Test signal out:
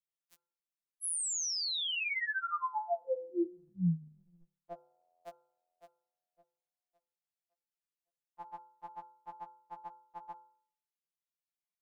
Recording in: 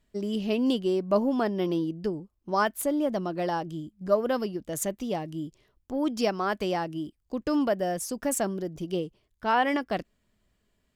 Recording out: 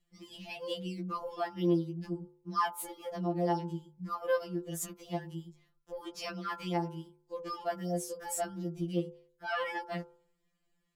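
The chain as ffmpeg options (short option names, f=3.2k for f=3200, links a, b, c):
-af "bandreject=f=51.01:t=h:w=4,bandreject=f=102.02:t=h:w=4,bandreject=f=153.03:t=h:w=4,bandreject=f=204.04:t=h:w=4,bandreject=f=255.05:t=h:w=4,bandreject=f=306.06:t=h:w=4,bandreject=f=357.07:t=h:w=4,bandreject=f=408.08:t=h:w=4,bandreject=f=459.09:t=h:w=4,bandreject=f=510.1:t=h:w=4,bandreject=f=561.11:t=h:w=4,bandreject=f=612.12:t=h:w=4,bandreject=f=663.13:t=h:w=4,bandreject=f=714.14:t=h:w=4,bandreject=f=765.15:t=h:w=4,bandreject=f=816.16:t=h:w=4,bandreject=f=867.17:t=h:w=4,bandreject=f=918.18:t=h:w=4,bandreject=f=969.19:t=h:w=4,bandreject=f=1.0202k:t=h:w=4,bandreject=f=1.07121k:t=h:w=4,bandreject=f=1.12222k:t=h:w=4,bandreject=f=1.17323k:t=h:w=4,bandreject=f=1.22424k:t=h:w=4,bandreject=f=1.27525k:t=h:w=4,bandreject=f=1.32626k:t=h:w=4,bandreject=f=1.37727k:t=h:w=4,bandreject=f=1.42828k:t=h:w=4,bandreject=f=1.47929k:t=h:w=4,bandreject=f=1.5303k:t=h:w=4,bandreject=f=1.58131k:t=h:w=4,bandreject=f=1.63232k:t=h:w=4,afftfilt=real='re*2.83*eq(mod(b,8),0)':imag='im*2.83*eq(mod(b,8),0)':win_size=2048:overlap=0.75,volume=-4dB"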